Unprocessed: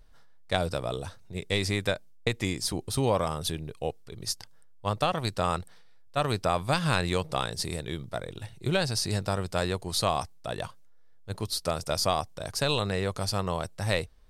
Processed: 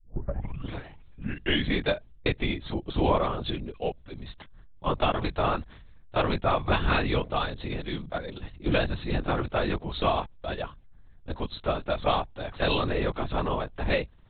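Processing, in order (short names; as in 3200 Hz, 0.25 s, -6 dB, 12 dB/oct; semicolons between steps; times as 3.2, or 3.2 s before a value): tape start at the beginning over 1.83 s; LPC vocoder at 8 kHz whisper; gain +2 dB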